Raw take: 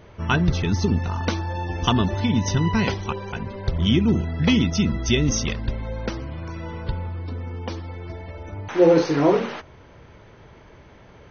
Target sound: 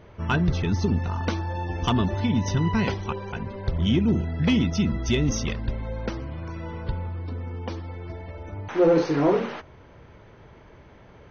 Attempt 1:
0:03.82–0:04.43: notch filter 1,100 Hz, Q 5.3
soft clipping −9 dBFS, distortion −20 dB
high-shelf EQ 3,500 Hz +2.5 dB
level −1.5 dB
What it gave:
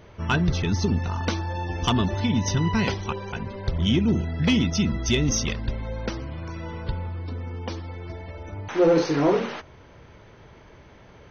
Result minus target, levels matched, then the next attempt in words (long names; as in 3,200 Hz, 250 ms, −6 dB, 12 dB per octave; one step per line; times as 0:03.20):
8,000 Hz band +6.0 dB
0:03.82–0:04.43: notch filter 1,100 Hz, Q 5.3
soft clipping −9 dBFS, distortion −20 dB
high-shelf EQ 3,500 Hz −6 dB
level −1.5 dB